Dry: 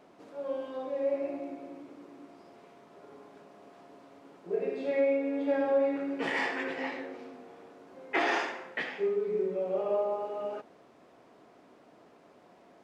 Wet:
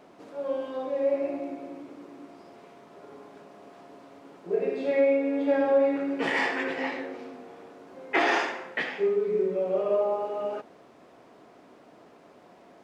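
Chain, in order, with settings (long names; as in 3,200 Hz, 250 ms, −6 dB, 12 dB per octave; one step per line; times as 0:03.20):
0:09.26–0:10.01: notch filter 820 Hz, Q 12
level +4.5 dB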